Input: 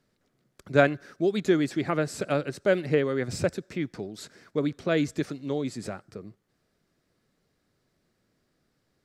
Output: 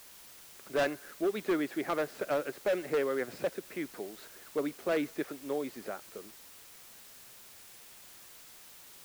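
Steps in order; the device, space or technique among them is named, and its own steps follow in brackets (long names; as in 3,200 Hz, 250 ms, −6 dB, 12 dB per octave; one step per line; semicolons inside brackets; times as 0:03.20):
aircraft radio (band-pass filter 390–2,300 Hz; hard clipping −23.5 dBFS, distortion −8 dB; white noise bed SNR 17 dB)
level −1 dB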